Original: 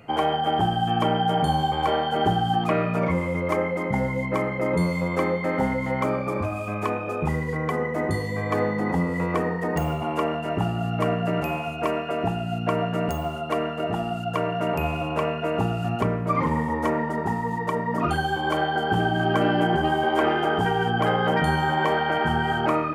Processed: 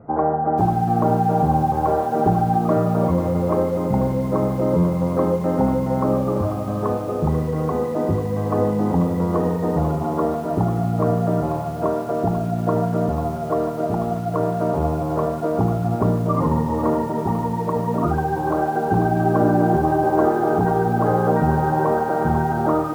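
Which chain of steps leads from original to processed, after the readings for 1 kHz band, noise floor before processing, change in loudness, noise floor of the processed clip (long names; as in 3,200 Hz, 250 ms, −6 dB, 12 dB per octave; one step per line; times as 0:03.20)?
+3.0 dB, −30 dBFS, +4.0 dB, −25 dBFS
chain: Bessel low-pass filter 840 Hz, order 8
feedback echo at a low word length 491 ms, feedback 55%, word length 7 bits, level −11 dB
level +5.5 dB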